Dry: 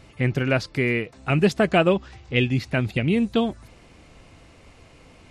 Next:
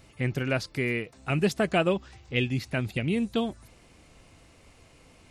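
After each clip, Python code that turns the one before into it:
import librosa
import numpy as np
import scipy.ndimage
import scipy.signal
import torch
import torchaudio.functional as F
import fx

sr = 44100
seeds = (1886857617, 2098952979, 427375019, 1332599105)

y = fx.high_shelf(x, sr, hz=7900.0, db=12.0)
y = y * 10.0 ** (-6.0 / 20.0)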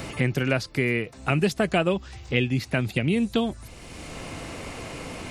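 y = fx.band_squash(x, sr, depth_pct=70)
y = y * 10.0 ** (3.5 / 20.0)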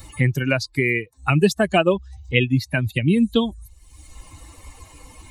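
y = fx.bin_expand(x, sr, power=2.0)
y = y * 10.0 ** (8.5 / 20.0)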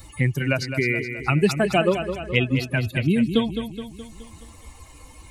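y = fx.echo_feedback(x, sr, ms=211, feedback_pct=53, wet_db=-9.0)
y = y * 10.0 ** (-2.5 / 20.0)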